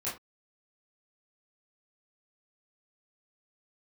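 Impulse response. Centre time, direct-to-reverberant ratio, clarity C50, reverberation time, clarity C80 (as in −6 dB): 32 ms, −10.0 dB, 8.0 dB, non-exponential decay, 15.0 dB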